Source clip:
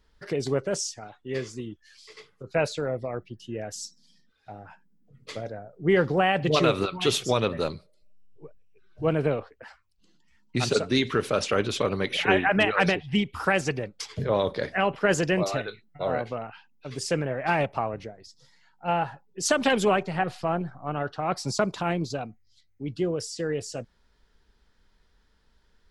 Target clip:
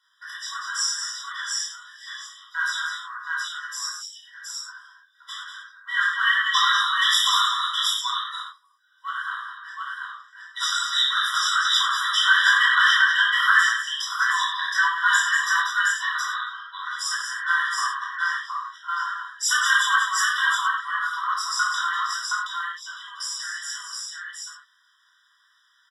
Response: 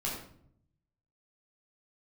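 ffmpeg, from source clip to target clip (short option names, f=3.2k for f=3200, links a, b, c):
-filter_complex "[0:a]aecho=1:1:187|197|721:0.316|0.316|0.708,asplit=2[a][b];[b]asoftclip=type=hard:threshold=-16dB,volume=-4dB[c];[a][c]amix=inputs=2:normalize=0,equalizer=f=4.2k:w=5.2:g=6[d];[1:a]atrim=start_sample=2205,atrim=end_sample=3969,asetrate=30870,aresample=44100[e];[d][e]afir=irnorm=-1:irlink=0,afftfilt=real='re*eq(mod(floor(b*sr/1024/990),2),1)':imag='im*eq(mod(floor(b*sr/1024/990),2),1)':win_size=1024:overlap=0.75"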